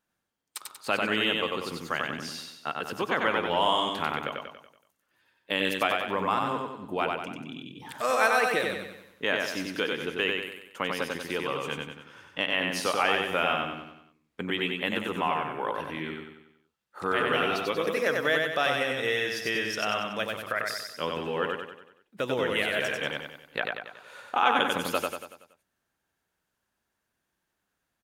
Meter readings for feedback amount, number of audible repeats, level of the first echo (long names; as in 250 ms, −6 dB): 48%, 6, −3.0 dB